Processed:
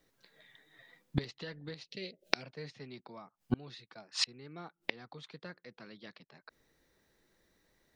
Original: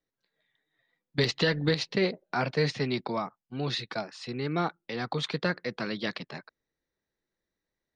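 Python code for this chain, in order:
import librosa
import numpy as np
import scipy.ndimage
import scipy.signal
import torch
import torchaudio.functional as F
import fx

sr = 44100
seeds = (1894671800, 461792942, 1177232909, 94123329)

y = fx.curve_eq(x, sr, hz=(580.0, 1000.0, 2800.0), db=(0, -17, 9), at=(1.84, 2.42), fade=0.02)
y = fx.gate_flip(y, sr, shuts_db=-31.0, range_db=-33)
y = y * 10.0 ** (14.5 / 20.0)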